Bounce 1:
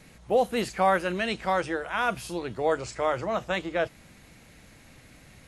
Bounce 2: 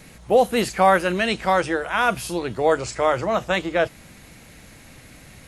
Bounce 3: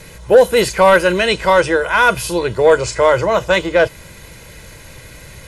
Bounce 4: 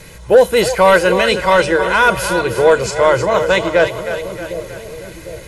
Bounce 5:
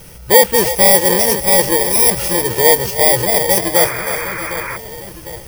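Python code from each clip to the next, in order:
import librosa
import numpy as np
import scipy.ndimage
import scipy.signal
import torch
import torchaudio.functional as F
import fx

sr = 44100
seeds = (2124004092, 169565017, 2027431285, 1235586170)

y1 = fx.high_shelf(x, sr, hz=11000.0, db=7.0)
y1 = F.gain(torch.from_numpy(y1), 6.5).numpy()
y2 = y1 + 0.6 * np.pad(y1, (int(2.0 * sr / 1000.0), 0))[:len(y1)]
y2 = fx.fold_sine(y2, sr, drive_db=3, ceiling_db=-2.5)
y3 = fx.echo_split(y2, sr, split_hz=510.0, low_ms=755, high_ms=314, feedback_pct=52, wet_db=-9.0)
y4 = fx.bit_reversed(y3, sr, seeds[0], block=32)
y4 = fx.spec_paint(y4, sr, seeds[1], shape='noise', start_s=3.75, length_s=1.02, low_hz=890.0, high_hz=2500.0, level_db=-26.0)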